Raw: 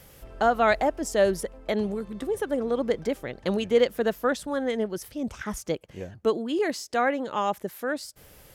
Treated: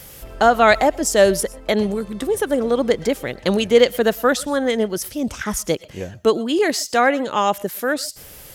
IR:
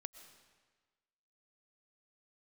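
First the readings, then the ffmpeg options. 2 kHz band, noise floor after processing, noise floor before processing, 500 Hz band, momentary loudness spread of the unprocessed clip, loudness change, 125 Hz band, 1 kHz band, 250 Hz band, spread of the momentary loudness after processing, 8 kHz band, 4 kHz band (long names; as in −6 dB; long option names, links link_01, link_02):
+9.0 dB, −41 dBFS, −52 dBFS, +7.5 dB, 10 LU, +8.0 dB, +7.5 dB, +8.0 dB, +7.5 dB, 11 LU, +13.5 dB, +11.5 dB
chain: -filter_complex "[0:a]asplit=2[link_01][link_02];[1:a]atrim=start_sample=2205,afade=type=out:start_time=0.18:duration=0.01,atrim=end_sample=8379,highshelf=frequency=2300:gain=11.5[link_03];[link_02][link_03]afir=irnorm=-1:irlink=0,volume=2.5dB[link_04];[link_01][link_04]amix=inputs=2:normalize=0,volume=2.5dB"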